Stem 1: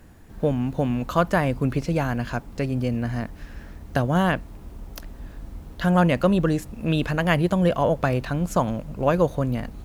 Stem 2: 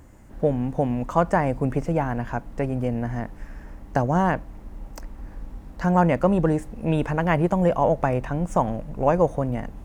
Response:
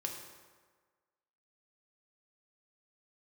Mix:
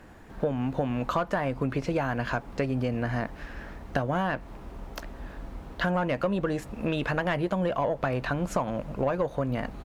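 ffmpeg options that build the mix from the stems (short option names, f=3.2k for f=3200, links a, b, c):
-filter_complex "[0:a]asplit=2[a][b];[b]highpass=f=720:p=1,volume=13dB,asoftclip=type=tanh:threshold=-6.5dB[c];[a][c]amix=inputs=2:normalize=0,lowpass=f=1.6k:p=1,volume=-6dB,volume=0dB[d];[1:a]adelay=15,volume=-11dB[e];[d][e]amix=inputs=2:normalize=0,acompressor=threshold=-24dB:ratio=6"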